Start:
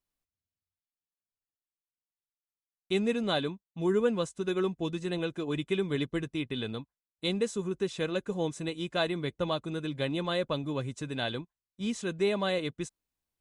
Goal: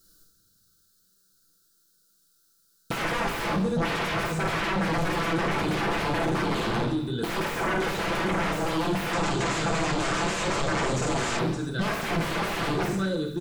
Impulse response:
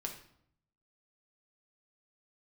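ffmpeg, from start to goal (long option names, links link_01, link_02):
-filter_complex "[0:a]firequalizer=gain_entry='entry(460,0);entry(910,-26);entry(1400,8);entry(2100,-24);entry(4000,6)':delay=0.05:min_phase=1,aecho=1:1:48|58|85|563:0.501|0.119|0.251|0.119,aeval=exprs='0.119*sin(PI/2*10*val(0)/0.119)':channel_layout=same[link_01];[1:a]atrim=start_sample=2205[link_02];[link_01][link_02]afir=irnorm=-1:irlink=0,asoftclip=type=tanh:threshold=-19dB,acompressor=threshold=-24dB:ratio=6,bandreject=frequency=50:width_type=h:width=6,bandreject=frequency=100:width_type=h:width=6,acrossover=split=2800[link_03][link_04];[link_04]acompressor=threshold=-45dB:ratio=4:attack=1:release=60[link_05];[link_03][link_05]amix=inputs=2:normalize=0,asettb=1/sr,asplit=3[link_06][link_07][link_08];[link_06]atrim=end=9.134[link_09];[link_07]atrim=start=9.13:end=11.39,asetpts=PTS-STARTPTS,afade=type=in:duration=0.004:curve=qsin,afade=type=out:start_time=2.256:duration=0.004:curve=qsin,lowpass=frequency=7400:width_type=q:width=4[link_10];[link_08]atrim=start=11.386[link_11];[link_09][link_10]acrossfade=duration=0.004:curve1=hsin:curve2=qsin[link_12];[link_12][link_11]acrossfade=duration=0.004:curve1=qsin:curve2=hsin,volume=1.5dB"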